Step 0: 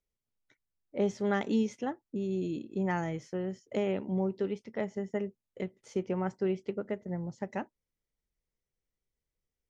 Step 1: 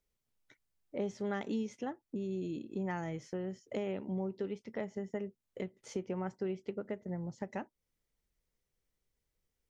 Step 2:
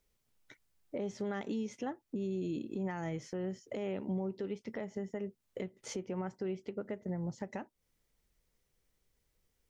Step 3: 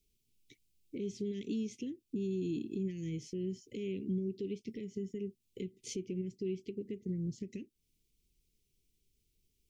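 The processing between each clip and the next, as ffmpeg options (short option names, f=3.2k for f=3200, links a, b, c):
-af "acompressor=threshold=-46dB:ratio=2,volume=4dB"
-af "alimiter=level_in=11.5dB:limit=-24dB:level=0:latency=1:release=279,volume=-11.5dB,volume=6.5dB"
-af "asuperstop=centerf=1000:order=12:qfactor=0.52,volume=1dB"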